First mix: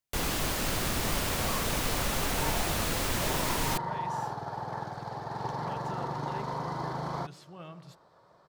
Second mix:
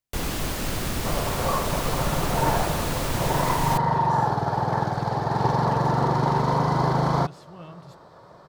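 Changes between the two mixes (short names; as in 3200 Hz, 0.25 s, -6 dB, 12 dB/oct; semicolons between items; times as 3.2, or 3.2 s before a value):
second sound +10.5 dB; master: add low shelf 440 Hz +5 dB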